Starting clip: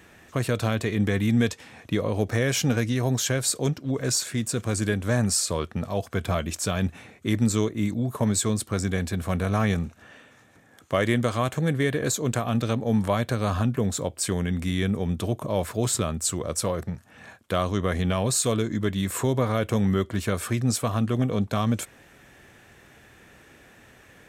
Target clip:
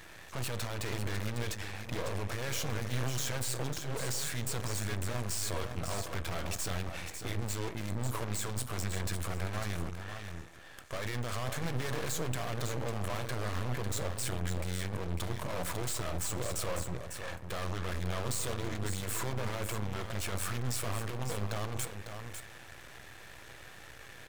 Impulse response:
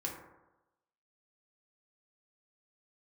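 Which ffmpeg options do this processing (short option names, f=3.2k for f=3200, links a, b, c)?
-filter_complex "[0:a]equalizer=f=250:t=o:w=0.99:g=-13,alimiter=limit=-21dB:level=0:latency=1,aeval=exprs='0.0891*(cos(1*acos(clip(val(0)/0.0891,-1,1)))-cos(1*PI/2))+0.0141*(cos(6*acos(clip(val(0)/0.0891,-1,1)))-cos(6*PI/2))':c=same,volume=35dB,asoftclip=hard,volume=-35dB,aecho=1:1:550:0.422,asplit=2[a][b];[1:a]atrim=start_sample=2205[c];[b][c]afir=irnorm=-1:irlink=0,volume=-6.5dB[d];[a][d]amix=inputs=2:normalize=0,aeval=exprs='max(val(0),0)':c=same,volume=2.5dB"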